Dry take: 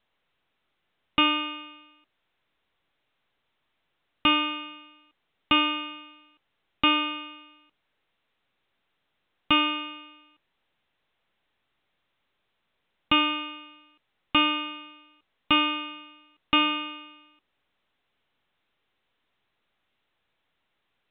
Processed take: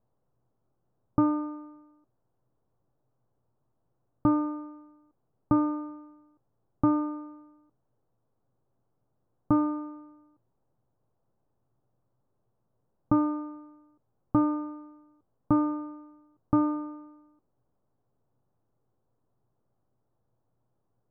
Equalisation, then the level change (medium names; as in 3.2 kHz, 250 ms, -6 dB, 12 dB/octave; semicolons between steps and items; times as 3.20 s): Gaussian low-pass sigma 9.8 samples; peaking EQ 120 Hz +14.5 dB 0.33 oct; +5.0 dB